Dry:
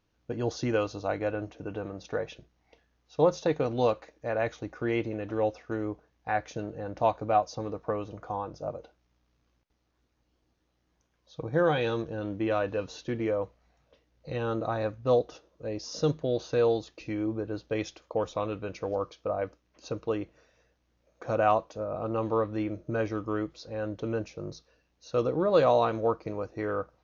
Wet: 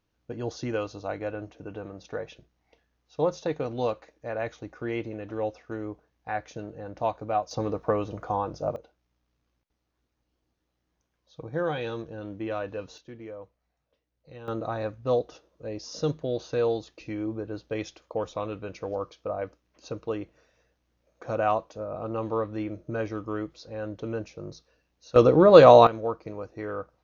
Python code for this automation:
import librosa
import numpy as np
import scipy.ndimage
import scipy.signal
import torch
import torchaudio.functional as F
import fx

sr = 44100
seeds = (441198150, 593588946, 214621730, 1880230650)

y = fx.gain(x, sr, db=fx.steps((0.0, -2.5), (7.51, 5.5), (8.76, -4.0), (12.98, -12.0), (14.48, -1.0), (25.16, 10.0), (25.87, -2.5)))